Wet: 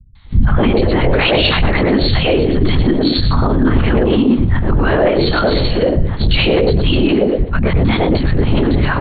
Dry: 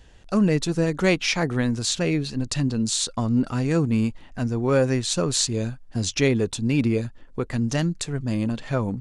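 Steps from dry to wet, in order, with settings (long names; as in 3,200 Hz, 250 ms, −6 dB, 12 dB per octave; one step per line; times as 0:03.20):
parametric band 980 Hz +5 dB 0.94 octaves
repeating echo 113 ms, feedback 26%, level −8 dB
linear-prediction vocoder at 8 kHz whisper
formants moved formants +3 semitones
three-band delay without the direct sound lows, highs, mids 150/260 ms, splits 190/840 Hz
boost into a limiter +20 dB
multiband upward and downward expander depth 40%
level −3.5 dB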